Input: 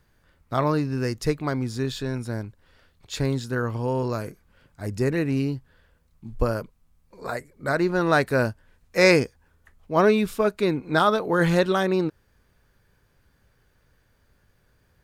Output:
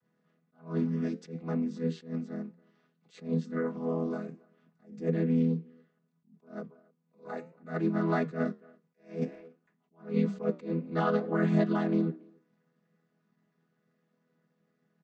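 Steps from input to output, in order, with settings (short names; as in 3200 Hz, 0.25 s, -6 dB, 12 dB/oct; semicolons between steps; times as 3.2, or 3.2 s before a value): chord vocoder major triad, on E3; flange 0.61 Hz, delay 9 ms, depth 6.2 ms, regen -76%; speakerphone echo 0.28 s, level -26 dB; attack slew limiter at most 180 dB/s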